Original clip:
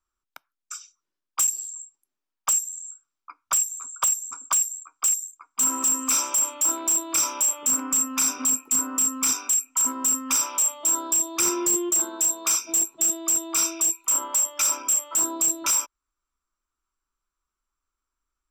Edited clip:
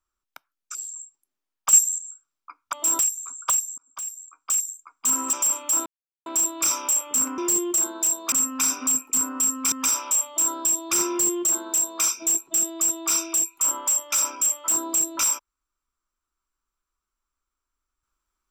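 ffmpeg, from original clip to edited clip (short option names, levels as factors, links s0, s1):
-filter_complex "[0:a]asplit=12[s0][s1][s2][s3][s4][s5][s6][s7][s8][s9][s10][s11];[s0]atrim=end=0.752[s12];[s1]atrim=start=1.548:end=2.532[s13];[s2]atrim=start=2.528:end=2.782,asetpts=PTS-STARTPTS,volume=2.82[s14];[s3]atrim=start=2.778:end=3.532[s15];[s4]atrim=start=10.738:end=11.002[s16];[s5]atrim=start=3.528:end=4.32,asetpts=PTS-STARTPTS,afade=t=out:st=0.788:d=0.004:c=hsin[s17];[s6]atrim=start=4.32:end=5.872,asetpts=PTS-STARTPTS,afade=t=in:d=0.89[s18];[s7]atrim=start=6.248:end=6.78,asetpts=PTS-STARTPTS,afade=t=out:st=0.528:d=0.004:c=hsin,apad=pad_dur=0.4[s19];[s8]atrim=start=6.78:end=7.902,asetpts=PTS-STARTPTS,afade=t=in:d=0.004:c=hsin[s20];[s9]atrim=start=11.558:end=12.502[s21];[s10]atrim=start=7.898:end=9.302[s22];[s11]atrim=start=10.188[s23];[s12][s13]acrossfade=d=0.004:c1=hsin:c2=hsin[s24];[s24][s14]acrossfade=d=0.004:c1=hsin:c2=hsin[s25];[s25][s15]acrossfade=d=0.004:c1=hsin:c2=hsin[s26];[s26][s16]acrossfade=d=0.004:c1=hsin:c2=hsin[s27];[s17][s18]concat=n=2:v=0:a=1[s28];[s27][s28]acrossfade=d=0.004:c1=hsin:c2=hsin[s29];[s19][s20]concat=n=2:v=0:a=1[s30];[s29][s30]acrossfade=d=0.004:c1=hsin:c2=hsin[s31];[s31][s21]acrossfade=d=0.004:c1=hsin:c2=hsin[s32];[s32][s22]acrossfade=d=0.004:c1=hsin:c2=hsin[s33];[s33][s23]acrossfade=d=0.004:c1=hsin:c2=hsin"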